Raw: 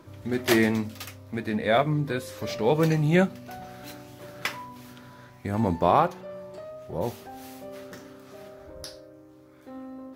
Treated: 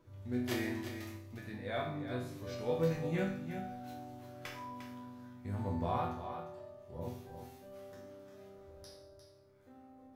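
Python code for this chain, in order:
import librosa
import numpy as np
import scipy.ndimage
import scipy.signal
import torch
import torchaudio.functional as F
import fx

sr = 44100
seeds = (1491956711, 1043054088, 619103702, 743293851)

y = fx.low_shelf(x, sr, hz=120.0, db=11.5)
y = fx.resonator_bank(y, sr, root=40, chord='minor', decay_s=0.64)
y = y + 10.0 ** (-9.0 / 20.0) * np.pad(y, (int(352 * sr / 1000.0), 0))[:len(y)]
y = y * librosa.db_to_amplitude(1.0)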